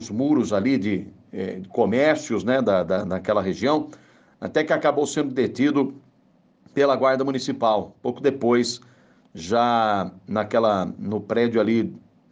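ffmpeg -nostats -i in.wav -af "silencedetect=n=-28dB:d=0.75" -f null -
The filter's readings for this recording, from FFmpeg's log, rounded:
silence_start: 5.90
silence_end: 6.77 | silence_duration: 0.87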